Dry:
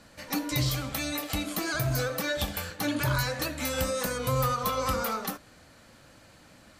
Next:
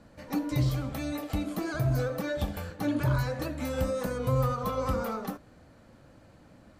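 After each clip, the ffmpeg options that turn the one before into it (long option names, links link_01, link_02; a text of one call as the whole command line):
ffmpeg -i in.wav -af "tiltshelf=frequency=1300:gain=7.5,volume=-5dB" out.wav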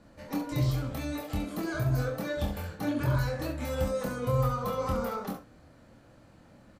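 ffmpeg -i in.wav -af "aecho=1:1:25|68:0.668|0.376,volume=-2.5dB" out.wav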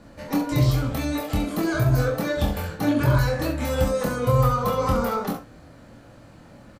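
ffmpeg -i in.wav -filter_complex "[0:a]asplit=2[link_01][link_02];[link_02]adelay=18,volume=-12.5dB[link_03];[link_01][link_03]amix=inputs=2:normalize=0,volume=8.5dB" out.wav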